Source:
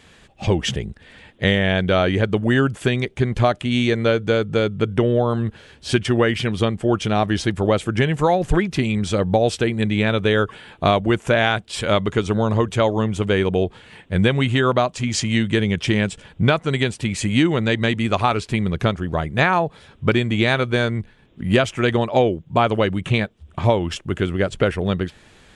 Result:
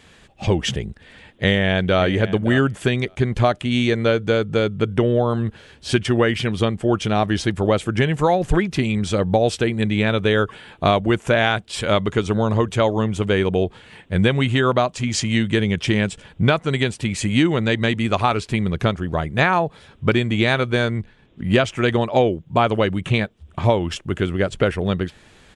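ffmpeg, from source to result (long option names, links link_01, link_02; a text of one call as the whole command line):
ffmpeg -i in.wav -filter_complex "[0:a]asplit=2[link_01][link_02];[link_02]afade=type=in:start_time=0.88:duration=0.01,afade=type=out:start_time=2.01:duration=0.01,aecho=0:1:570|1140:0.188365|0.0188365[link_03];[link_01][link_03]amix=inputs=2:normalize=0,asettb=1/sr,asplit=3[link_04][link_05][link_06];[link_04]atrim=end=20.994[link_07];[link_05]atrim=start=20.99:end=21.72,asetpts=PTS-STARTPTS,afade=type=in:duration=0.004:curve=qsin,afade=type=out:start_time=0.726:duration=0.004:curve=qsin,lowpass=8400[link_08];[link_06]atrim=start=21.716[link_09];[link_07][link_08]acrossfade=duration=0.004:curve1=hsin:curve2=qsin[link_10];[link_10][link_09]acrossfade=duration=0.004:curve1=qsin:curve2=hsin" out.wav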